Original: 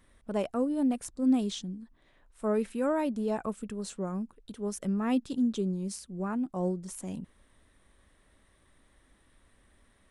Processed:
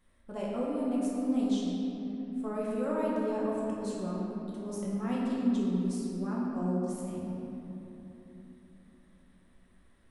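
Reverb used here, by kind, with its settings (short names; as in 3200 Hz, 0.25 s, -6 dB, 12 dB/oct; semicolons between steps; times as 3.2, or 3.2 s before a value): shoebox room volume 190 m³, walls hard, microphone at 0.92 m; gain -9 dB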